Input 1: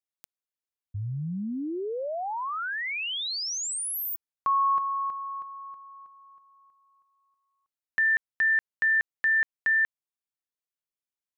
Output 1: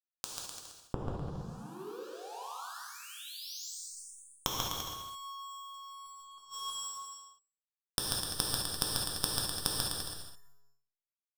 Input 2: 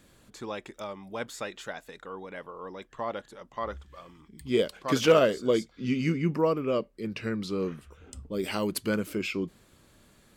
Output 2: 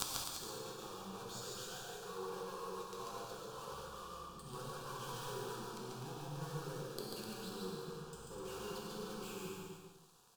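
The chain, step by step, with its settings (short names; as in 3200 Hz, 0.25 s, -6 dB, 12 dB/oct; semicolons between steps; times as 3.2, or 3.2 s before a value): one-sided fold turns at -24 dBFS; treble ducked by the level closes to 1700 Hz, closed at -26 dBFS; Bessel low-pass 7700 Hz, order 2; low shelf 440 Hz -6.5 dB; added harmonics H 4 -14 dB, 7 -7 dB, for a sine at -13.5 dBFS; fuzz box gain 49 dB, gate -51 dBFS; fixed phaser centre 410 Hz, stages 8; resonator 140 Hz, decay 0.45 s, harmonics all, mix 40%; flipped gate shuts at -27 dBFS, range -40 dB; on a send: bouncing-ball echo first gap 0.14 s, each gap 0.8×, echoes 5; on the sum: non-linear reverb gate 0.23 s flat, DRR -2.5 dB; gain +9.5 dB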